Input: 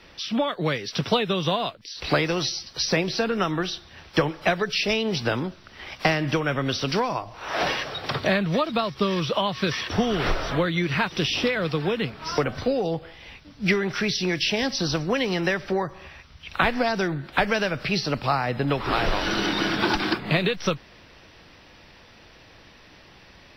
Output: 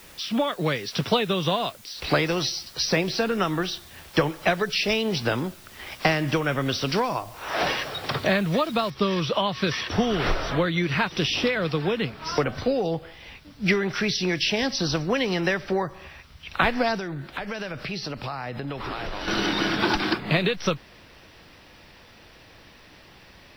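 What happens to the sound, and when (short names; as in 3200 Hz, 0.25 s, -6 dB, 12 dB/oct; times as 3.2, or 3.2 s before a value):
8.9 noise floor step -51 dB -69 dB
16.95–19.28 compressor, threshold -28 dBFS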